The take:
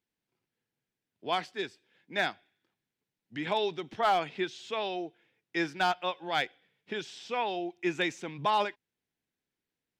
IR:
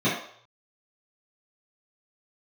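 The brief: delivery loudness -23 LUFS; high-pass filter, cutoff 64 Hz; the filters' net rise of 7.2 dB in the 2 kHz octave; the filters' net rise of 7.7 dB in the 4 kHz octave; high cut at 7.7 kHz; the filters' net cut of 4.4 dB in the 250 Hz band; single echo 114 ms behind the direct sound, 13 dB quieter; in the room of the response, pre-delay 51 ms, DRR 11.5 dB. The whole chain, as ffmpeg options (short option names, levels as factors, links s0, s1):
-filter_complex "[0:a]highpass=64,lowpass=7700,equalizer=f=250:t=o:g=-8,equalizer=f=2000:t=o:g=7.5,equalizer=f=4000:t=o:g=7,aecho=1:1:114:0.224,asplit=2[s0][s1];[1:a]atrim=start_sample=2205,adelay=51[s2];[s1][s2]afir=irnorm=-1:irlink=0,volume=0.0473[s3];[s0][s3]amix=inputs=2:normalize=0,volume=1.78"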